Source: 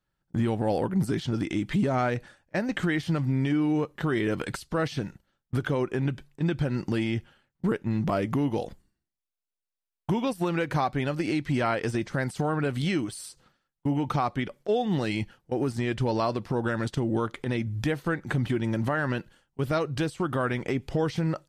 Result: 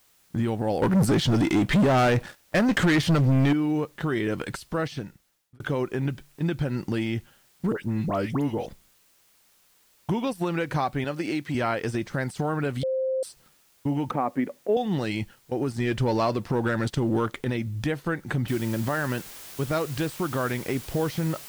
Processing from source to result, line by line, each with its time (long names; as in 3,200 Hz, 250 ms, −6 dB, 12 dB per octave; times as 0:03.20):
0:00.82–0:03.53: leveller curve on the samples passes 3
0:04.76–0:05.60: fade out
0:07.72–0:08.66: all-pass dispersion highs, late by 82 ms, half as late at 1,800 Hz
0:11.04–0:11.55: Bessel high-pass filter 180 Hz
0:12.83–0:13.23: beep over 524 Hz −23 dBFS
0:14.11–0:14.77: loudspeaker in its box 200–2,100 Hz, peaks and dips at 260 Hz +8 dB, 530 Hz +6 dB, 1,400 Hz −6 dB
0:15.80–0:17.50: leveller curve on the samples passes 1
0:18.48: noise floor change −62 dB −43 dB